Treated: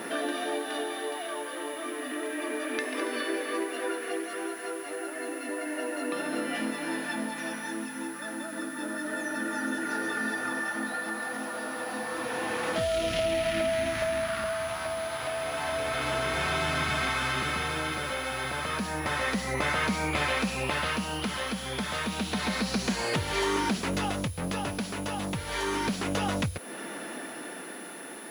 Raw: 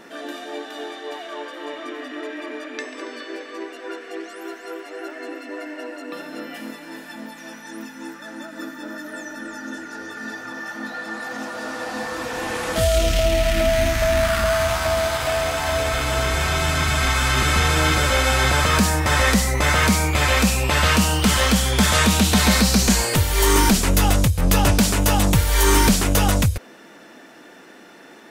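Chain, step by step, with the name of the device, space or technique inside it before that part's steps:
medium wave at night (band-pass filter 140–4,200 Hz; downward compressor 4 to 1, threshold −35 dBFS, peak gain reduction 18.5 dB; amplitude tremolo 0.3 Hz, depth 45%; steady tone 10,000 Hz −53 dBFS; white noise bed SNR 24 dB)
level +7 dB

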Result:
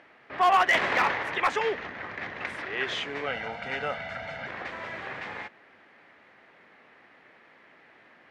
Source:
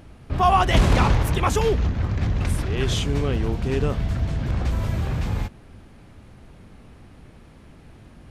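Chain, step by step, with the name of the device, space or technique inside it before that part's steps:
megaphone (band-pass filter 530–3,200 Hz; parametric band 1,900 Hz +10.5 dB 0.56 octaves; hard clipping −13.5 dBFS, distortion −17 dB)
0:03.26–0:04.47: comb filter 1.4 ms, depth 91%
level −2 dB

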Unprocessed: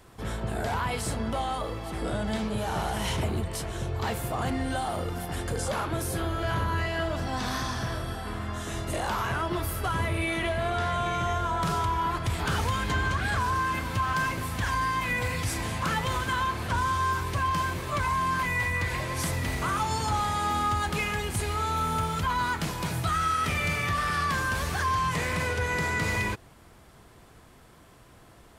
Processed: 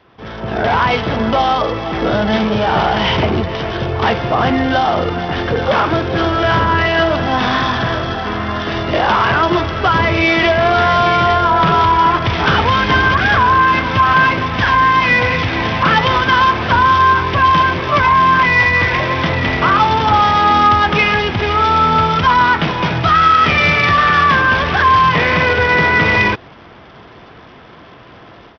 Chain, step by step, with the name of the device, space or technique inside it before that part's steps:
Bluetooth headset (high-pass filter 190 Hz 6 dB per octave; automatic gain control gain up to 12 dB; downsampling to 8,000 Hz; level +5 dB; SBC 64 kbit/s 44,100 Hz)

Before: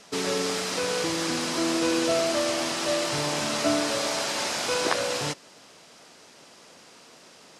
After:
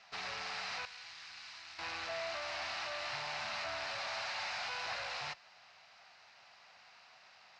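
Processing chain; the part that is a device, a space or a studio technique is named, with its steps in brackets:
scooped metal amplifier (tube saturation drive 32 dB, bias 0.75; loudspeaker in its box 90–3,900 Hz, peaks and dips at 160 Hz −6 dB, 470 Hz −8 dB, 750 Hz +8 dB, 3,300 Hz −10 dB; guitar amp tone stack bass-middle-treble 10-0-10)
0:00.85–0:01.79: guitar amp tone stack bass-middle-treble 5-5-5
level +5 dB

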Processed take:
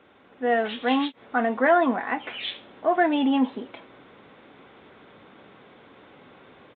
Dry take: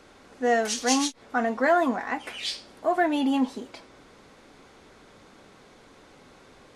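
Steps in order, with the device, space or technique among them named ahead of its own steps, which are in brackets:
Bluetooth headset (high-pass filter 100 Hz 12 dB per octave; automatic gain control gain up to 5.5 dB; downsampling to 8,000 Hz; level −3 dB; SBC 64 kbit/s 16,000 Hz)

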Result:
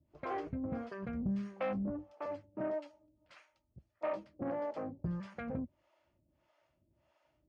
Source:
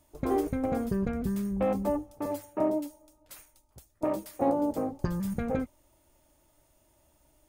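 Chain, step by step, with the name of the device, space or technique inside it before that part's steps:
0:01.13–0:01.72: high-shelf EQ 2,500 Hz +9 dB
guitar amplifier with harmonic tremolo (two-band tremolo in antiphase 1.6 Hz, depth 100%, crossover 420 Hz; soft clipping −27 dBFS, distortion −15 dB; loudspeaker in its box 89–4,000 Hz, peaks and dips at 280 Hz −6 dB, 430 Hz −8 dB, 850 Hz −5 dB, 3,700 Hz −8 dB)
level +1 dB

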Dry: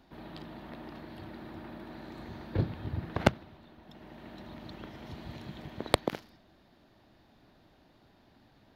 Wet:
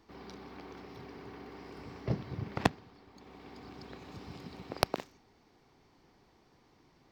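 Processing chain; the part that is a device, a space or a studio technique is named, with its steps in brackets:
nightcore (speed change +23%)
level −3 dB

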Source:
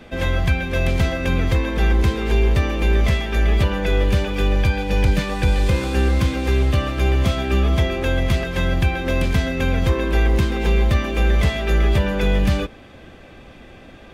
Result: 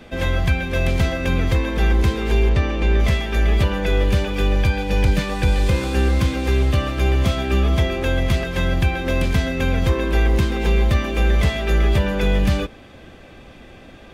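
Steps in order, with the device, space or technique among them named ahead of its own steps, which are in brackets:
exciter from parts (in parallel at −12.5 dB: high-pass filter 2,600 Hz + soft clipping −39.5 dBFS, distortion −7 dB)
0:02.49–0:03.00: on the sum: high-frequency loss of the air 70 metres

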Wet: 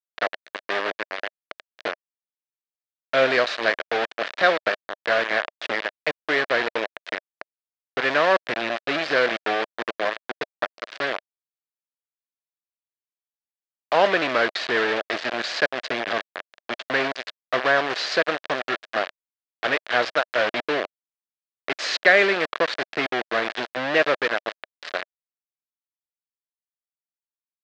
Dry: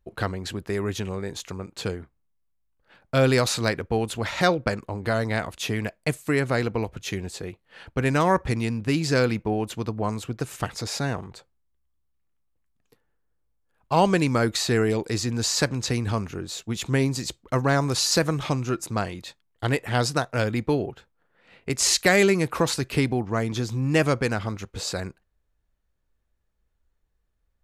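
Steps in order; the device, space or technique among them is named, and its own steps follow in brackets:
hand-held game console (bit reduction 4 bits; loudspeaker in its box 490–4,000 Hz, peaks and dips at 620 Hz +6 dB, 890 Hz −5 dB, 1,700 Hz +6 dB)
level +2 dB

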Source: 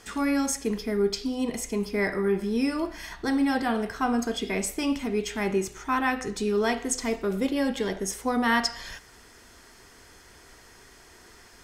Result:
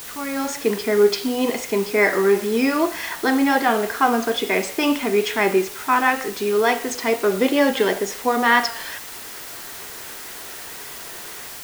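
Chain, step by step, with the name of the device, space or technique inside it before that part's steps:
dictaphone (band-pass filter 360–3,800 Hz; automatic gain control gain up to 15 dB; tape wow and flutter; white noise bed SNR 15 dB)
level −2 dB

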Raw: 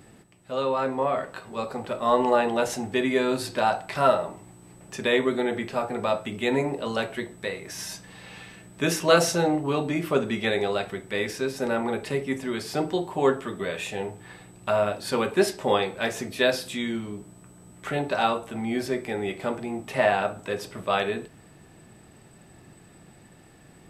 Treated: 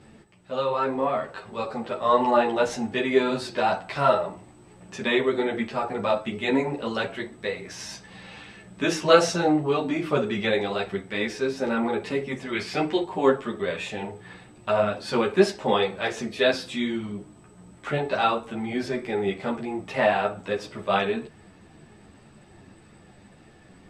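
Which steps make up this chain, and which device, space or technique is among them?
0:12.52–0:13.03: parametric band 2,300 Hz +10 dB 0.78 octaves
string-machine ensemble chorus (string-ensemble chorus; low-pass filter 6,000 Hz 12 dB per octave)
level +4 dB

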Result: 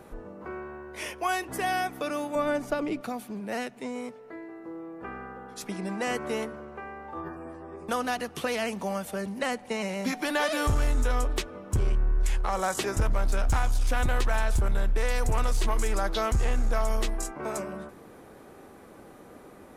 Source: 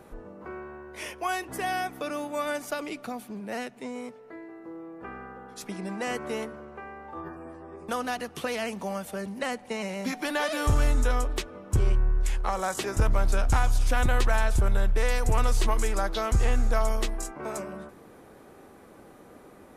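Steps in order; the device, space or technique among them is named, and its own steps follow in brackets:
limiter into clipper (brickwall limiter −18.5 dBFS, peak gain reduction 3.5 dB; hard clipping −20 dBFS, distortion −26 dB)
0:02.35–0:03.01: spectral tilt −3 dB per octave
level +1.5 dB

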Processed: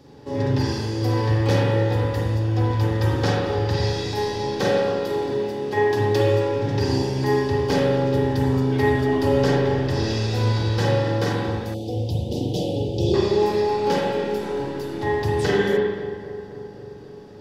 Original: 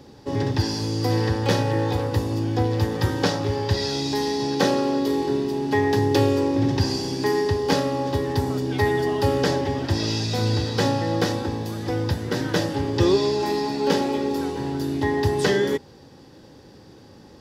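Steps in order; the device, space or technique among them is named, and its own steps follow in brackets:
dub delay into a spring reverb (feedback echo with a low-pass in the loop 264 ms, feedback 73%, low-pass 2,000 Hz, level −13 dB; spring reverb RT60 1.2 s, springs 38/45 ms, chirp 70 ms, DRR −4 dB)
0:11.74–0:13.14: elliptic band-stop filter 720–3,000 Hz, stop band 80 dB
level −4.5 dB

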